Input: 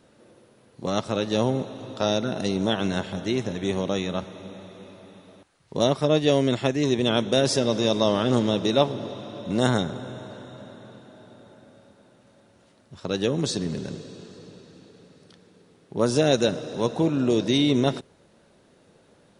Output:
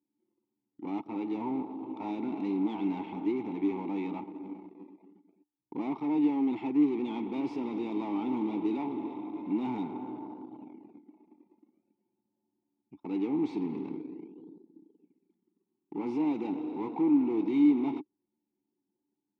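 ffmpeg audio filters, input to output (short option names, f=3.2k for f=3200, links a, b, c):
-filter_complex "[0:a]dynaudnorm=f=600:g=5:m=4dB,anlmdn=2.51,asplit=2[a][b];[b]acrusher=samples=20:mix=1:aa=0.000001:lfo=1:lforange=20:lforate=0.46,volume=-11dB[c];[a][c]amix=inputs=2:normalize=0,volume=13.5dB,asoftclip=hard,volume=-13.5dB,asplit=2[d][e];[e]highpass=f=720:p=1,volume=19dB,asoftclip=type=tanh:threshold=-13dB[f];[d][f]amix=inputs=2:normalize=0,lowpass=f=1.1k:p=1,volume=-6dB,asplit=3[g][h][i];[g]bandpass=f=300:t=q:w=8,volume=0dB[j];[h]bandpass=f=870:t=q:w=8,volume=-6dB[k];[i]bandpass=f=2.24k:t=q:w=8,volume=-9dB[l];[j][k][l]amix=inputs=3:normalize=0"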